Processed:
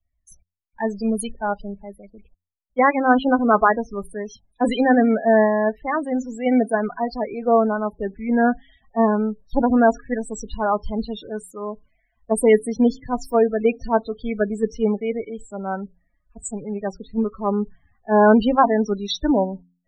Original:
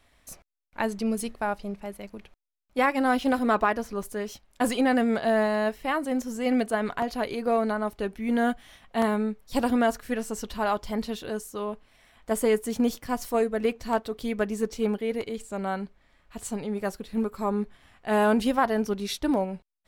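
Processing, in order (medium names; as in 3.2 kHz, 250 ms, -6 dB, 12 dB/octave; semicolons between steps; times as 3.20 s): loudest bins only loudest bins 16; de-hum 88.56 Hz, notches 3; three bands expanded up and down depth 70%; trim +6.5 dB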